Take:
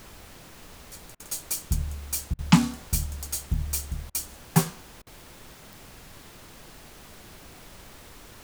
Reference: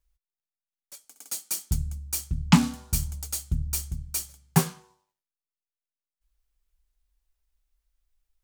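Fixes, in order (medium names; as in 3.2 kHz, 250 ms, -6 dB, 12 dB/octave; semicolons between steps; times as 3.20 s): de-click; interpolate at 1.15/2.34/4.10/5.02 s, 46 ms; noise print and reduce 30 dB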